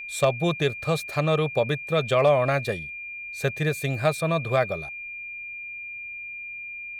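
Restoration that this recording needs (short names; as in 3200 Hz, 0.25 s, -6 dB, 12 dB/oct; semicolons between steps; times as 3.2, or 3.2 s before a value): clip repair -10 dBFS; notch 2400 Hz, Q 30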